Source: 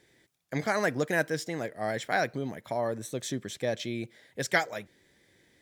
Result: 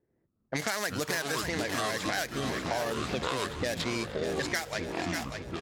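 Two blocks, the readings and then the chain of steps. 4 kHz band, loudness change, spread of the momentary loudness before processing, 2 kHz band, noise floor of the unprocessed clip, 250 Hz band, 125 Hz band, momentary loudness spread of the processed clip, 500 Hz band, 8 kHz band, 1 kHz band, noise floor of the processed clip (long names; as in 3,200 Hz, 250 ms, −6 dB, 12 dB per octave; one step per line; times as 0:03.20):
+5.5 dB, −0.5 dB, 9 LU, −1.0 dB, −68 dBFS, +0.5 dB, 0.0 dB, 3 LU, −2.0 dB, +4.0 dB, −0.5 dB, −76 dBFS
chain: running median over 15 samples
low-pass that shuts in the quiet parts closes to 480 Hz, open at −26.5 dBFS
delay with pitch and tempo change per echo 89 ms, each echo −7 semitones, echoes 3, each echo −6 dB
automatic gain control gain up to 14 dB
high-shelf EQ 4,700 Hz +9 dB
brickwall limiter −11 dBFS, peak gain reduction 11 dB
tilt shelving filter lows −8 dB, about 1,200 Hz
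repeating echo 591 ms, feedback 37%, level −10.5 dB
downward compressor, threshold −26 dBFS, peak gain reduction 11 dB
level −1.5 dB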